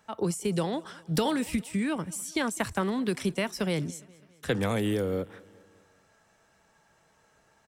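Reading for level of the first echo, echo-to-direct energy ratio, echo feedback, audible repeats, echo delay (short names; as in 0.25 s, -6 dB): -23.5 dB, -22.0 dB, 56%, 3, 0.205 s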